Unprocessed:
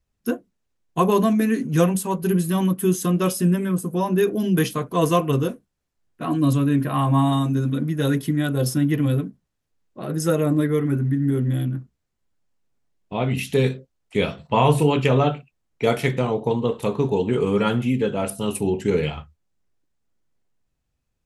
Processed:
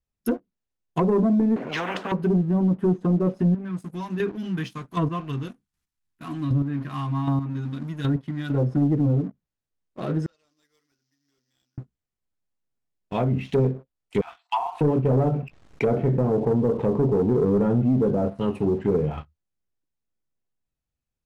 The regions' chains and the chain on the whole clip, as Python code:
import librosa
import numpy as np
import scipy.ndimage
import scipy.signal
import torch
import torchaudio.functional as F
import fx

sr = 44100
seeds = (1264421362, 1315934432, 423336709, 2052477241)

y = fx.chain(x, sr, fx.bandpass_edges(low_hz=390.0, high_hz=3600.0),
    fx.spectral_comp(ratio=10.0), at=(1.56, 2.12))
y = fx.chain(y, sr, fx.law_mismatch(coded='mu'),
    fx.peak_eq(hz=530.0, db=-14.0, octaves=0.9),
    fx.chopper(hz=1.3, depth_pct=60, duty_pct=15), at=(3.43, 8.5))
y = fx.chain(y, sr, fx.law_mismatch(coded='A'),
    fx.bandpass_q(hz=5200.0, q=7.7),
    fx.resample_bad(factor=4, down='none', up='hold'), at=(10.26, 11.78))
y = fx.chain(y, sr, fx.brickwall_highpass(low_hz=680.0),
    fx.tilt_eq(slope=2.0), at=(14.21, 14.81))
y = fx.chain(y, sr, fx.lowpass(hz=3000.0, slope=6),
    fx.env_flatten(amount_pct=50), at=(15.32, 18.3))
y = fx.leveller(y, sr, passes=1)
y = fx.env_lowpass_down(y, sr, base_hz=580.0, full_db=-14.0)
y = fx.leveller(y, sr, passes=1)
y = y * 10.0 ** (-6.5 / 20.0)